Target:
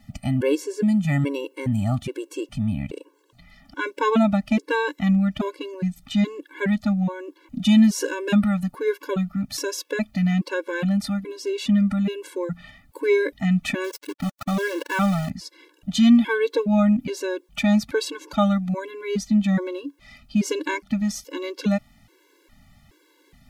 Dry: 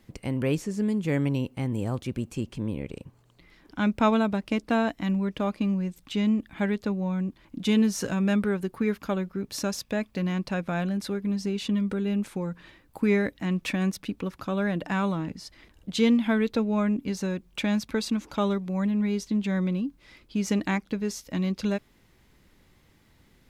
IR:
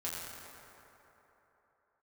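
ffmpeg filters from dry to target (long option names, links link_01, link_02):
-filter_complex "[0:a]asettb=1/sr,asplit=3[link_01][link_02][link_03];[link_01]atrim=end=13.844[link_04];[link_02]atrim=start=13.84:end=15.3,asetpts=PTS-STARTPTS,afade=type=in:duration=0.004:curve=qsin,afade=type=out:start_time=1.456:duration=0.004:curve=qsin,aeval=exprs='val(0)*gte(abs(val(0)),0.0211)':channel_layout=same[link_05];[link_03]atrim=start=15.296[link_06];[link_04][link_05]acrossfade=duration=0.004:curve1=hsin:curve2=qsin[link_07];[link_07][link_06]acrossfade=duration=0.004:curve1=qsin:curve2=hsin,afftfilt=real='re*gt(sin(2*PI*1.2*pts/sr)*(1-2*mod(floor(b*sr/1024/290),2)),0)':imag='im*gt(sin(2*PI*1.2*pts/sr)*(1-2*mod(floor(b*sr/1024/290),2)),0)':win_size=1024:overlap=0.75,volume=7.5dB"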